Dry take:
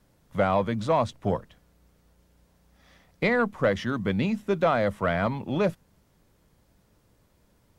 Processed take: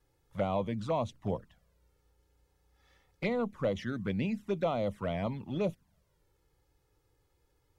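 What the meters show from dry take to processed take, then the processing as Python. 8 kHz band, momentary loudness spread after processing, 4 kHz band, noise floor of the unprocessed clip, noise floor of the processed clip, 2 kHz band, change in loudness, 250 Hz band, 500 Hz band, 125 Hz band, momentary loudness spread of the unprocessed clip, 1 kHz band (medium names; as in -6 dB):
no reading, 5 LU, -8.0 dB, -65 dBFS, -74 dBFS, -13.5 dB, -8.0 dB, -6.5 dB, -7.5 dB, -6.0 dB, 5 LU, -10.0 dB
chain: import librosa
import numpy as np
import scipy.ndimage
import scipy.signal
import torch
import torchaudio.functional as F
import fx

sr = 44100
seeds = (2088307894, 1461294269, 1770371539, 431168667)

y = fx.env_flanger(x, sr, rest_ms=2.4, full_db=-20.5)
y = y * librosa.db_to_amplitude(-6.0)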